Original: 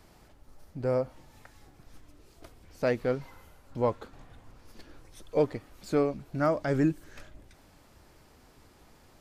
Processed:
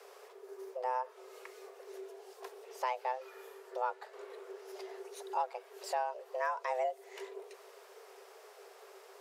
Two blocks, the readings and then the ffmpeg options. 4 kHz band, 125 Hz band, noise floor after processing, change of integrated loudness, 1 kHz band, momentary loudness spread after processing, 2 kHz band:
−1.5 dB, below −40 dB, −57 dBFS, −10.0 dB, +3.0 dB, 19 LU, −3.5 dB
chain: -af "acompressor=threshold=-42dB:ratio=2,afreqshift=380,volume=2dB"

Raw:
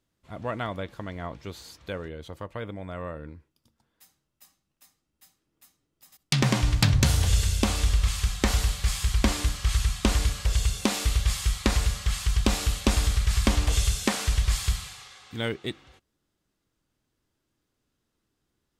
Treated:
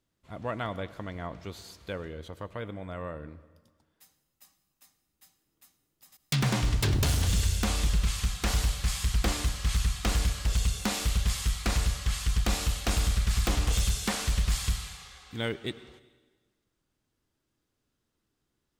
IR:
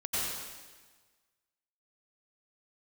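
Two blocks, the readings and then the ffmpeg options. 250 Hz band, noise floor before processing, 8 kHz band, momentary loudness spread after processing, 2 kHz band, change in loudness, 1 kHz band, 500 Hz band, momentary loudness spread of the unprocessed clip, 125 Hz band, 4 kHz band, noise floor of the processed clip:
−5.0 dB, −79 dBFS, −2.5 dB, 13 LU, −3.0 dB, −3.0 dB, −3.0 dB, −3.5 dB, 15 LU, −3.0 dB, −3.0 dB, −80 dBFS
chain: -filter_complex "[0:a]aeval=exprs='0.133*(abs(mod(val(0)/0.133+3,4)-2)-1)':channel_layout=same,asplit=2[link_01][link_02];[1:a]atrim=start_sample=2205[link_03];[link_02][link_03]afir=irnorm=-1:irlink=0,volume=-22.5dB[link_04];[link_01][link_04]amix=inputs=2:normalize=0,volume=-2.5dB"

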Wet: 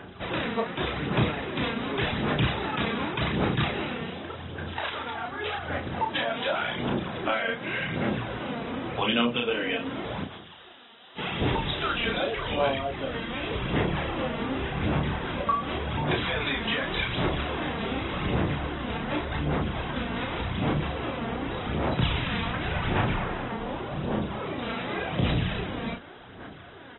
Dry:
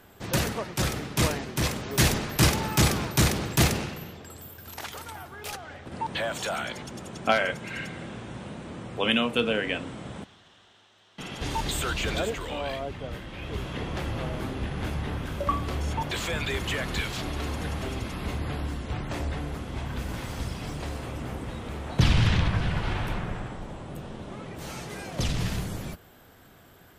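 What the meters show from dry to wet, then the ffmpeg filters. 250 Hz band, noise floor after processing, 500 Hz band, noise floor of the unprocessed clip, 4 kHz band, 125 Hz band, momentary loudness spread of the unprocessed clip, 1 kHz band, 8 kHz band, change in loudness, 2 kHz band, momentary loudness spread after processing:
+2.0 dB, −46 dBFS, +2.5 dB, −54 dBFS, +0.5 dB, −1.5 dB, 16 LU, +3.0 dB, below −40 dB, +0.5 dB, +2.0 dB, 7 LU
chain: -filter_complex "[0:a]highpass=frequency=140:poles=1,acompressor=threshold=-36dB:ratio=3,aphaser=in_gain=1:out_gain=1:delay=4.4:decay=0.59:speed=0.87:type=sinusoidal,asplit=2[link_01][link_02];[link_02]adelay=33,volume=-4dB[link_03];[link_01][link_03]amix=inputs=2:normalize=0,volume=5.5dB" -ar 22050 -c:a aac -b:a 16k

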